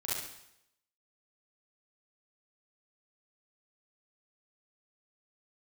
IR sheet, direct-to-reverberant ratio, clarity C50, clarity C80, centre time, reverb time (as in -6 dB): -8.0 dB, -3.0 dB, 3.5 dB, 77 ms, 0.75 s